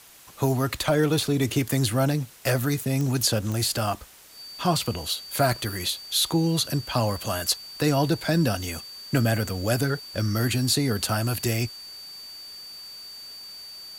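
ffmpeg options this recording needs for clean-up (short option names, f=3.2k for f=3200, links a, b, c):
-af "adeclick=t=4,bandreject=f=4.6k:w=30,afftdn=nr=29:nf=-42"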